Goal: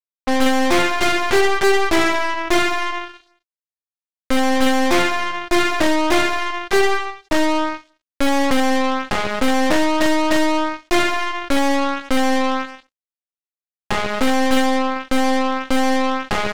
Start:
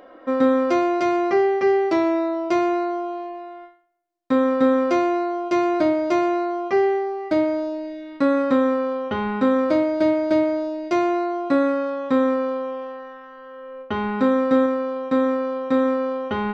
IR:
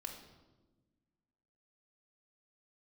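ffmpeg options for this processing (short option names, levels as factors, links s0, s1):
-af "acrusher=bits=3:mix=0:aa=0.5,aeval=exprs='0.447*(cos(1*acos(clip(val(0)/0.447,-1,1)))-cos(1*PI/2))+0.0158*(cos(5*acos(clip(val(0)/0.447,-1,1)))-cos(5*PI/2))+0.0398*(cos(7*acos(clip(val(0)/0.447,-1,1)))-cos(7*PI/2))+0.112*(cos(8*acos(clip(val(0)/0.447,-1,1)))-cos(8*PI/2))':c=same"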